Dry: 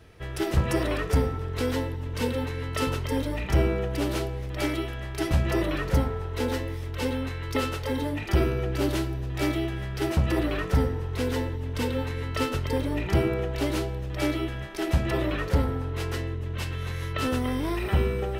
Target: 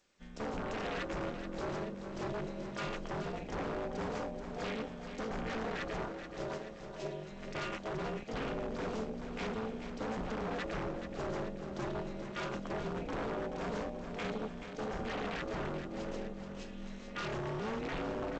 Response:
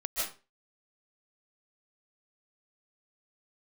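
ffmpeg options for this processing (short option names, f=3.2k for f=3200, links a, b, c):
-filter_complex "[0:a]aemphasis=mode=production:type=bsi,afwtdn=0.0282,asettb=1/sr,asplit=3[a][b][c];[a]atrim=end=6.054[d];[b]atrim=start=6.05:end=7.31,asetpts=PTS-STARTPTS,afade=t=in:d=0.004:c=qsin,afade=t=out:st=1.256:d=0.004:c=qsin,lowshelf=f=420:g=-9.5[e];[c]atrim=start=7.306[f];[d][e]acrossfade=d=0.004:c1=hsin:c2=qsin[g];[g][f]acrossfade=d=0.004:c1=qsin:c2=hsin,alimiter=limit=-23.5dB:level=0:latency=1:release=15,aeval=exprs='val(0)*sin(2*PI*110*n/s)':c=same,aeval=exprs='0.0266*(abs(mod(val(0)/0.0266+3,4)-2)-1)':c=same,aecho=1:1:430|860|1290|1720|2150|2580:0.335|0.184|0.101|0.0557|0.0307|0.0169" -ar 16000 -c:a g722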